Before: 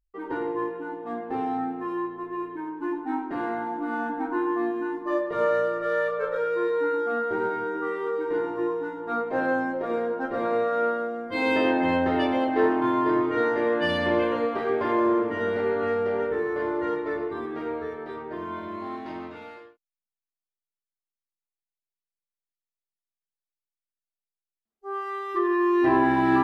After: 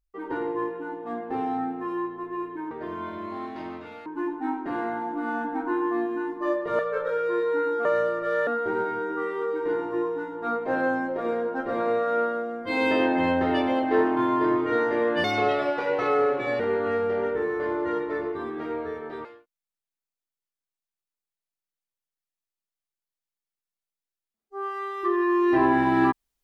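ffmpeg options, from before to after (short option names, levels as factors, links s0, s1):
-filter_complex "[0:a]asplit=9[s0][s1][s2][s3][s4][s5][s6][s7][s8];[s0]atrim=end=2.712[s9];[s1]atrim=start=18.208:end=19.562[s10];[s2]atrim=start=2.708:end=5.442[s11];[s3]atrim=start=6.058:end=7.122[s12];[s4]atrim=start=5.438:end=6.062[s13];[s5]atrim=start=7.118:end=13.894[s14];[s6]atrim=start=13.89:end=15.56,asetpts=PTS-STARTPTS,asetrate=54243,aresample=44100[s15];[s7]atrim=start=15.556:end=18.212[s16];[s8]atrim=start=19.558[s17];[s9][s10]acrossfade=d=0.004:c1=hsin:c2=hsin[s18];[s18][s11]acrossfade=d=0.004:c1=hsin:c2=hsin[s19];[s19][s12]acrossfade=d=0.004:c1=hsin:c2=hsin[s20];[s20][s13]acrossfade=d=0.004:c1=hsin:c2=hsin[s21];[s21][s14]acrossfade=d=0.004:c1=hsin:c2=hsin[s22];[s22][s15]acrossfade=d=0.004:c1=hsin:c2=hsin[s23];[s23][s16]acrossfade=d=0.004:c1=hsin:c2=hsin[s24];[s24][s17]acrossfade=d=0.004:c1=hsin:c2=hsin"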